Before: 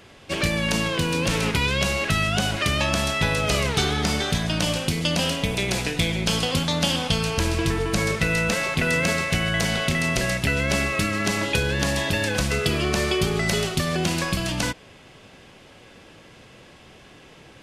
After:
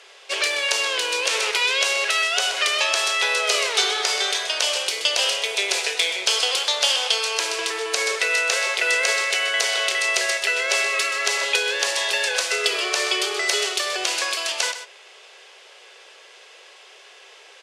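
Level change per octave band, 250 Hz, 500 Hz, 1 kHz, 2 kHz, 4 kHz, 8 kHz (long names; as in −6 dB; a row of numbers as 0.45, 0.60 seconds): −19.5, −1.5, +1.0, +3.5, +5.5, +5.5 decibels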